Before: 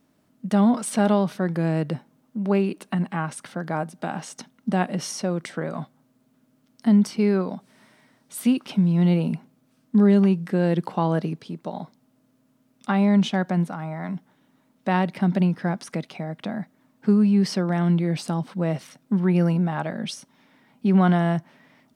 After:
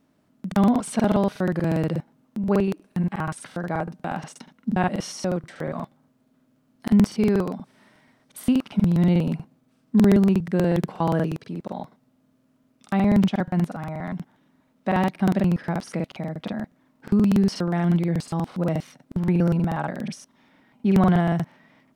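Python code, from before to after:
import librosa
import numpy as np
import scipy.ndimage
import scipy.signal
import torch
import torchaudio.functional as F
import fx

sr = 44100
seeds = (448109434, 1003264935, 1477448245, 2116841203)

y = fx.high_shelf(x, sr, hz=4700.0, db=-6.0)
y = fx.buffer_crackle(y, sr, first_s=0.35, period_s=0.12, block=2048, kind='repeat')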